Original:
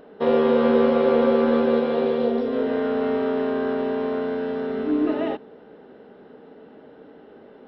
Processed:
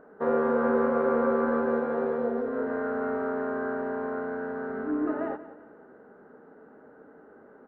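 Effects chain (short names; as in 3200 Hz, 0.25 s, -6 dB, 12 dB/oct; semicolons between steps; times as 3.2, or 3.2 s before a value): resonant high shelf 2200 Hz -14 dB, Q 3; on a send: feedback echo 0.181 s, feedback 41%, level -15 dB; on the sum: gain -7 dB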